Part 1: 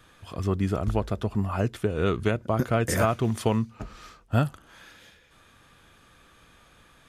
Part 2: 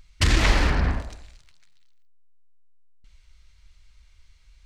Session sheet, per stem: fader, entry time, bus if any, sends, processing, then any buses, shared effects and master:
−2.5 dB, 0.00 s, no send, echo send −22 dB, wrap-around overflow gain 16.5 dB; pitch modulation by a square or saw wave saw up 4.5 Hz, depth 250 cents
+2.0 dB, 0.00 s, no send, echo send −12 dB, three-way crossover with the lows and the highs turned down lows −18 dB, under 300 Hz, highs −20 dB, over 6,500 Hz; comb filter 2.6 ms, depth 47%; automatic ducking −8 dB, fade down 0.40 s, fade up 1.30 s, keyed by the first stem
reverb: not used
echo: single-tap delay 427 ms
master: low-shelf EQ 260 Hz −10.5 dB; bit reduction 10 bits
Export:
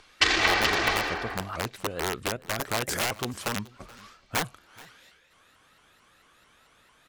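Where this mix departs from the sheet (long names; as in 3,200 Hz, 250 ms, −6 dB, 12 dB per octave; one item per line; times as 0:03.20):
stem 2 +2.0 dB → +9.0 dB
master: missing bit reduction 10 bits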